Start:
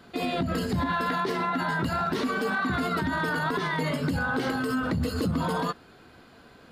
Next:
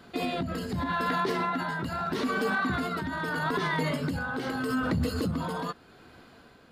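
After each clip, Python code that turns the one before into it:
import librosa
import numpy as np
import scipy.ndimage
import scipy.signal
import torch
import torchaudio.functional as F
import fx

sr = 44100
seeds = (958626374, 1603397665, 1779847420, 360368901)

y = x * (1.0 - 0.46 / 2.0 + 0.46 / 2.0 * np.cos(2.0 * np.pi * 0.81 * (np.arange(len(x)) / sr)))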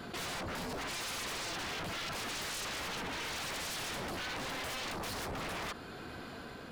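y = 10.0 ** (-35.0 / 20.0) * (np.abs((x / 10.0 ** (-35.0 / 20.0) + 3.0) % 4.0 - 2.0) - 1.0)
y = fx.env_flatten(y, sr, amount_pct=50)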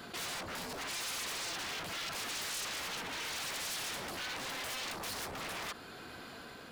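y = fx.tilt_eq(x, sr, slope=1.5)
y = F.gain(torch.from_numpy(y), -2.0).numpy()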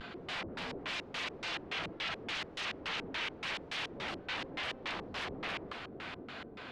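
y = fx.echo_diffused(x, sr, ms=498, feedback_pct=47, wet_db=-8.5)
y = fx.vibrato(y, sr, rate_hz=0.3, depth_cents=23.0)
y = fx.filter_lfo_lowpass(y, sr, shape='square', hz=3.5, low_hz=390.0, high_hz=3000.0, q=1.5)
y = F.gain(torch.from_numpy(y), 1.0).numpy()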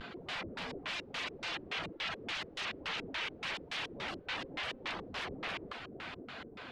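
y = fx.dereverb_blind(x, sr, rt60_s=0.5)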